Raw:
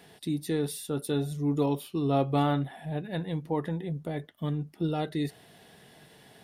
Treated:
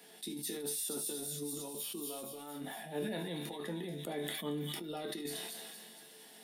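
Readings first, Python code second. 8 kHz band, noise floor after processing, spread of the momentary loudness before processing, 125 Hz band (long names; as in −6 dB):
+6.0 dB, −56 dBFS, 8 LU, −16.5 dB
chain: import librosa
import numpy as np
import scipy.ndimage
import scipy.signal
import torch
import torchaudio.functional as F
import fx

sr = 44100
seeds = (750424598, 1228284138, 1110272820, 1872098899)

y = scipy.signal.sosfilt(scipy.signal.butter(8, 180.0, 'highpass', fs=sr, output='sos'), x)
y = fx.high_shelf(y, sr, hz=4900.0, db=11.0)
y = fx.over_compress(y, sr, threshold_db=-32.0, ratio=-0.5)
y = fx.resonator_bank(y, sr, root=38, chord='minor', decay_s=0.29)
y = fx.echo_wet_highpass(y, sr, ms=232, feedback_pct=62, hz=3600.0, wet_db=-3)
y = fx.sustainer(y, sr, db_per_s=23.0)
y = F.gain(torch.from_numpy(y), 2.5).numpy()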